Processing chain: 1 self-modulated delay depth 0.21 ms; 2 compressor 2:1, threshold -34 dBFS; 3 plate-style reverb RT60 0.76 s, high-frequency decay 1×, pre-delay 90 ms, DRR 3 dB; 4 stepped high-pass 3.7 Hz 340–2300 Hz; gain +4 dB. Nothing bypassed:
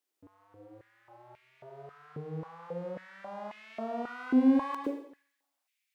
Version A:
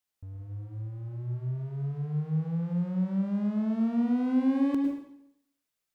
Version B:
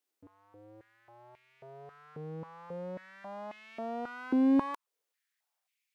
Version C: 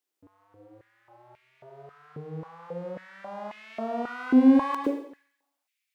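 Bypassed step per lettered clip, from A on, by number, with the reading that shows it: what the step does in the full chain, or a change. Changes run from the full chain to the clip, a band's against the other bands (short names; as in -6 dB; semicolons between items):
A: 4, 125 Hz band +20.0 dB; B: 3, loudness change -2.0 LU; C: 2, momentary loudness spread change -1 LU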